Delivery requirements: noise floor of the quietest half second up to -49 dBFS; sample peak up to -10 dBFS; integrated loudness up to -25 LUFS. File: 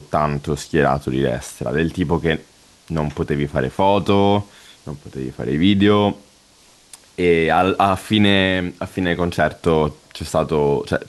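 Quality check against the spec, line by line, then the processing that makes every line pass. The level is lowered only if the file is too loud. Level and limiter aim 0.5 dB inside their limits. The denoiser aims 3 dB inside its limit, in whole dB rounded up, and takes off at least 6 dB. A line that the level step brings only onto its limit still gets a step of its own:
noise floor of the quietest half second -51 dBFS: pass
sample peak -3.5 dBFS: fail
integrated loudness -18.5 LUFS: fail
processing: trim -7 dB

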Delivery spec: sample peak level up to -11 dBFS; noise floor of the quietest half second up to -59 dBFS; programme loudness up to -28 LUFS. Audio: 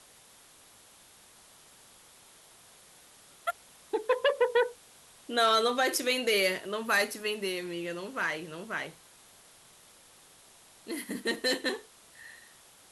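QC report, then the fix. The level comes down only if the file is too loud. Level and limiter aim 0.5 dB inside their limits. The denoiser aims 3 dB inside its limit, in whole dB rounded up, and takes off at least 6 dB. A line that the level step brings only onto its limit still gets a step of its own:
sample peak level -15.0 dBFS: pass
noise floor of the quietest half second -57 dBFS: fail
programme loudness -30.0 LUFS: pass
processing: noise reduction 6 dB, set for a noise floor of -57 dBFS

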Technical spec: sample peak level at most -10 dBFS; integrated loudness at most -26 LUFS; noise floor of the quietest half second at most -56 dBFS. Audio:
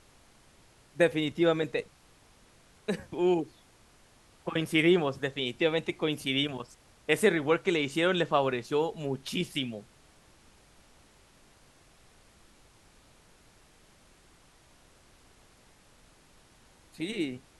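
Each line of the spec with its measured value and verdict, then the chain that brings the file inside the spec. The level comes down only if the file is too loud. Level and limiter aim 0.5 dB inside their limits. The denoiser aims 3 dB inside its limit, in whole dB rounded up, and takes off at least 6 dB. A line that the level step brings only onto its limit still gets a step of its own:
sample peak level -9.0 dBFS: fail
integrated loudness -29.0 LUFS: pass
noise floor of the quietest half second -60 dBFS: pass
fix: peak limiter -10.5 dBFS

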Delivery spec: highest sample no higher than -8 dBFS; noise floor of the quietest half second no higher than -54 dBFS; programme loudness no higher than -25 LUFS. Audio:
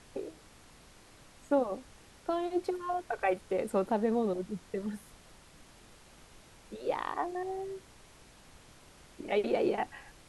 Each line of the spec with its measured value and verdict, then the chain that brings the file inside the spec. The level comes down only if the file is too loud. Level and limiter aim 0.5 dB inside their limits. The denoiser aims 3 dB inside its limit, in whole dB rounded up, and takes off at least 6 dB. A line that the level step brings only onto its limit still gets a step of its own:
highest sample -16.5 dBFS: pass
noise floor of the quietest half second -57 dBFS: pass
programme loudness -33.5 LUFS: pass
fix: none needed

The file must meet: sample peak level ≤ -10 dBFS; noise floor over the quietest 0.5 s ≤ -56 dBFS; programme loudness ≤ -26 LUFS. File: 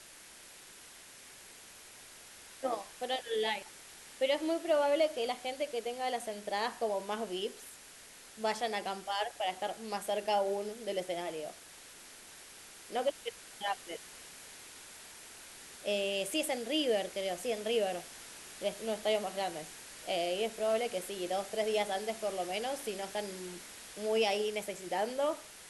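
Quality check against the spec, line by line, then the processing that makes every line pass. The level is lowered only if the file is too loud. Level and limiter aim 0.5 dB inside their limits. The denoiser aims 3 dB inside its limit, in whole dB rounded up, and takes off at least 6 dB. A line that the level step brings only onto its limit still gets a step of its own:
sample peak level -18.0 dBFS: pass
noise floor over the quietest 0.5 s -54 dBFS: fail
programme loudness -35.0 LUFS: pass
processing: noise reduction 6 dB, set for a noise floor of -54 dBFS

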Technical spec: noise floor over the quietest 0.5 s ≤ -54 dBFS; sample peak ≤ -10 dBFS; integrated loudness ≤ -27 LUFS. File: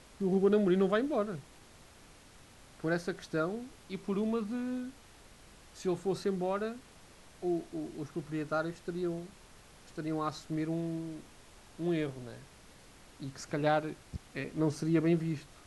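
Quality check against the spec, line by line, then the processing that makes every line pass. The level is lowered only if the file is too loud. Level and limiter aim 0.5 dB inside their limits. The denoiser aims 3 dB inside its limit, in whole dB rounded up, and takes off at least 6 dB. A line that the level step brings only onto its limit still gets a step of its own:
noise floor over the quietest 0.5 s -57 dBFS: pass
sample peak -16.5 dBFS: pass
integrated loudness -34.0 LUFS: pass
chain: none needed

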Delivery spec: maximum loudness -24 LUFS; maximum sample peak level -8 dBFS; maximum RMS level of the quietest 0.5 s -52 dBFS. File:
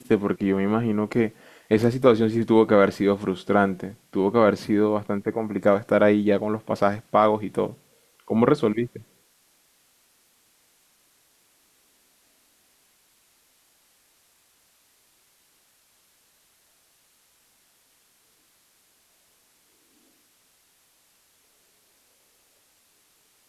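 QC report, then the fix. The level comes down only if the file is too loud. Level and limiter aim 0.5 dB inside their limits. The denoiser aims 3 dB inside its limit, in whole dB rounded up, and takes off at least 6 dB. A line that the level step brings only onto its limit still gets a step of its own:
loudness -22.0 LUFS: fail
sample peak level -5.5 dBFS: fail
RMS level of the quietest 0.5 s -63 dBFS: pass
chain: trim -2.5 dB; peak limiter -8.5 dBFS

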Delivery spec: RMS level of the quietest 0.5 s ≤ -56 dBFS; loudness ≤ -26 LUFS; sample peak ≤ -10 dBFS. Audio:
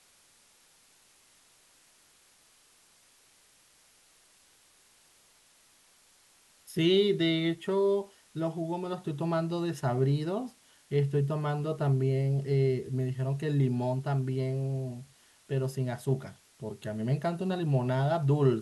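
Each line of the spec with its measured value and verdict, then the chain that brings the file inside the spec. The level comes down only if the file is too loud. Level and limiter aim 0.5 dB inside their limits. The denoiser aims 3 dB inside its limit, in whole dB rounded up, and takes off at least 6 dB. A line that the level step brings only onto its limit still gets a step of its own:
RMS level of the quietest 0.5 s -63 dBFS: pass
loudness -30.0 LUFS: pass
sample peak -12.5 dBFS: pass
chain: none needed

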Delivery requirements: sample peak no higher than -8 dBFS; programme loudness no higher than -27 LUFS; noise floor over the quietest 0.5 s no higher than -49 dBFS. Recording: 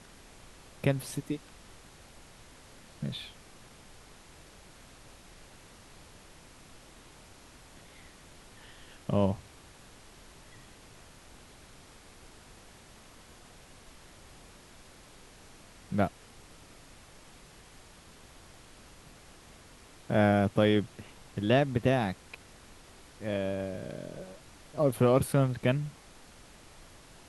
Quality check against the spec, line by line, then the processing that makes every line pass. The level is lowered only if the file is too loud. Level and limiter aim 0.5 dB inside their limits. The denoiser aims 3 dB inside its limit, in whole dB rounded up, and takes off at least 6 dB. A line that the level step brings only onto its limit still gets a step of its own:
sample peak -11.5 dBFS: pass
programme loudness -30.0 LUFS: pass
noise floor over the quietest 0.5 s -54 dBFS: pass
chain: none needed

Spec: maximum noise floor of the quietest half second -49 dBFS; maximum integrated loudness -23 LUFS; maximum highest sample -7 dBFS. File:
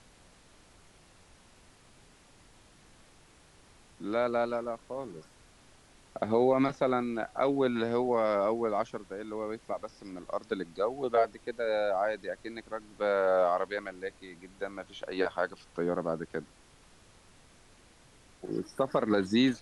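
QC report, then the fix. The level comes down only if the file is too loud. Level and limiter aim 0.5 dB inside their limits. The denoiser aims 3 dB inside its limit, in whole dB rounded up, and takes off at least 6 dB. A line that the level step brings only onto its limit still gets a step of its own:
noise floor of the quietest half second -59 dBFS: pass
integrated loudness -31.5 LUFS: pass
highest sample -14.5 dBFS: pass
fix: none needed

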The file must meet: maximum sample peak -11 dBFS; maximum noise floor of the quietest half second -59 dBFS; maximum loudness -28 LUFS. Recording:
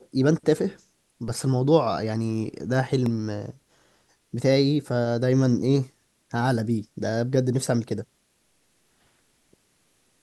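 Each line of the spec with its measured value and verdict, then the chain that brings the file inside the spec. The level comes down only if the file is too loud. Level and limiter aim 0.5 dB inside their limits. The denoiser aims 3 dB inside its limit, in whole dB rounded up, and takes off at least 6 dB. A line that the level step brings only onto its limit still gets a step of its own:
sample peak -5.5 dBFS: fail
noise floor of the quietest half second -67 dBFS: pass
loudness -24.5 LUFS: fail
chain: trim -4 dB; peak limiter -11.5 dBFS

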